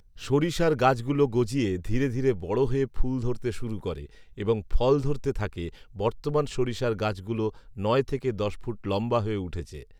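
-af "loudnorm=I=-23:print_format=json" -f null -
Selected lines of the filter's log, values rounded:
"input_i" : "-27.8",
"input_tp" : "-8.1",
"input_lra" : "3.8",
"input_thresh" : "-38.1",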